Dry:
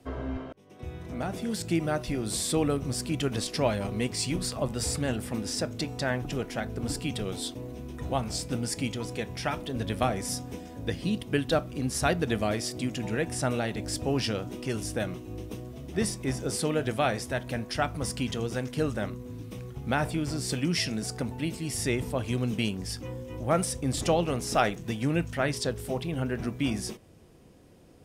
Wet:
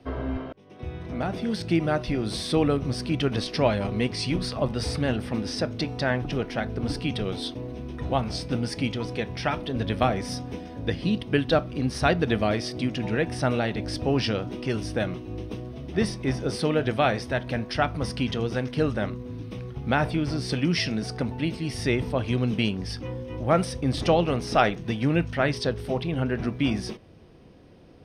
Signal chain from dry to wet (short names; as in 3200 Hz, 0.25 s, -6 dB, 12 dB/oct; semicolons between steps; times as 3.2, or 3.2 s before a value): polynomial smoothing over 15 samples; gain +4 dB